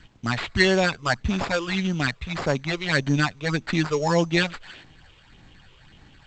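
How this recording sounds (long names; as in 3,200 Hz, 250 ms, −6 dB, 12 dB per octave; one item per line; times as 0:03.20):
phaser sweep stages 8, 1.7 Hz, lowest notch 210–2,300 Hz
aliases and images of a low sample rate 6,100 Hz, jitter 0%
G.722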